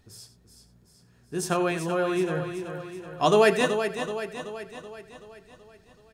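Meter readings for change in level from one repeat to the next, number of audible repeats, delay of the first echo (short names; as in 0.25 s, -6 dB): no steady repeat, 10, 88 ms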